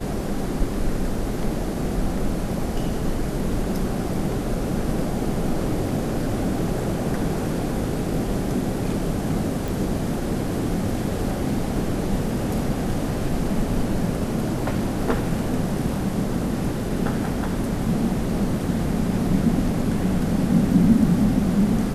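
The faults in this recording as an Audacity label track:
9.680000	9.680000	click

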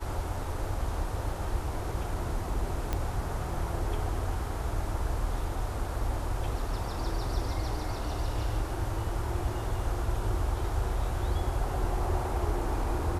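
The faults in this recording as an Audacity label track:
2.930000	2.930000	click −16 dBFS

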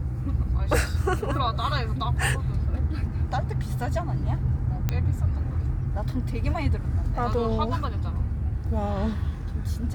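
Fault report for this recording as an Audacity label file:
4.890000	4.890000	click −12 dBFS

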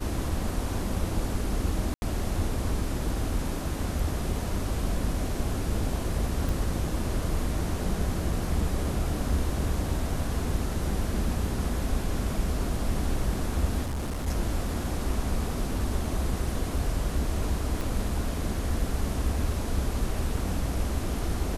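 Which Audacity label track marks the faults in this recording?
1.940000	2.020000	drop-out 81 ms
6.490000	6.490000	click
13.840000	14.280000	clipping −27.5 dBFS
17.810000	17.810000	click

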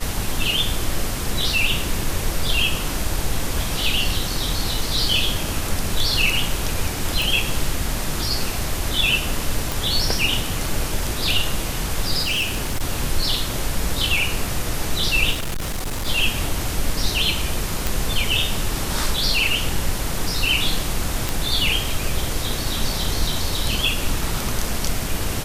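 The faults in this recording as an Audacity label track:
7.220000	7.220000	click
9.720000	9.720000	click
12.230000	12.810000	clipping −18 dBFS
15.310000	16.080000	clipping −21.5 dBFS
17.870000	17.870000	click
21.290000	21.290000	click

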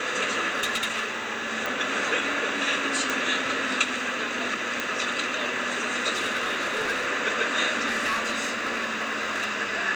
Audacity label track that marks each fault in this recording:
0.500000	1.180000	clipping −22 dBFS
1.660000	1.660000	click
3.100000	3.100000	click
4.800000	4.800000	click
6.140000	7.070000	clipping −22.5 dBFS
7.870000	9.510000	clipping −22 dBFS

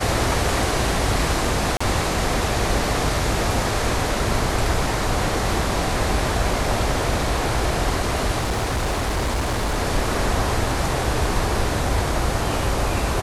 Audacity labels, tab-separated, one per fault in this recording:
1.770000	1.800000	drop-out 35 ms
8.380000	9.770000	clipping −18.5 dBFS

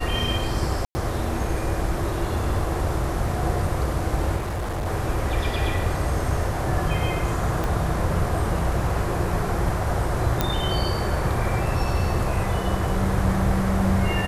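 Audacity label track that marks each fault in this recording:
0.850000	0.950000	drop-out 100 ms
4.360000	4.870000	clipping −24 dBFS
7.640000	7.640000	click
10.410000	10.410000	click −6 dBFS

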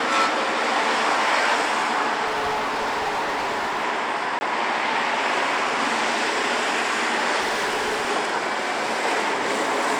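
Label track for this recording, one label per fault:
2.260000	3.850000	clipping −21 dBFS
4.390000	4.410000	drop-out 20 ms
7.400000	8.100000	clipping −20 dBFS

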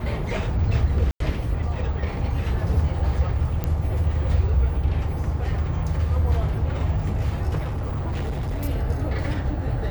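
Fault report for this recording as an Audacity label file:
1.110000	1.200000	drop-out 93 ms
3.640000	3.640000	click −13 dBFS
7.580000	8.650000	clipping −23 dBFS

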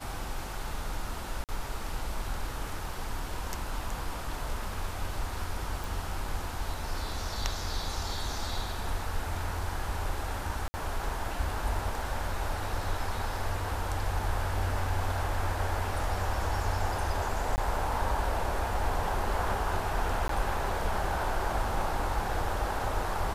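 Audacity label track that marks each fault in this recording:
1.440000	1.490000	drop-out 48 ms
5.840000	5.840000	click
10.680000	10.740000	drop-out 60 ms
17.560000	17.580000	drop-out 19 ms
20.280000	20.290000	drop-out 13 ms

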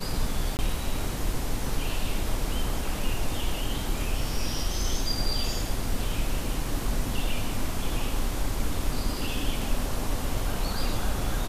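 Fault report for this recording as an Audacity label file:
0.570000	0.590000	drop-out 19 ms

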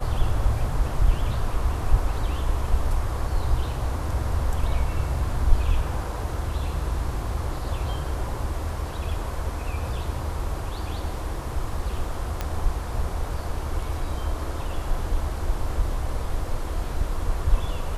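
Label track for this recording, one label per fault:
12.410000	12.410000	click −13 dBFS

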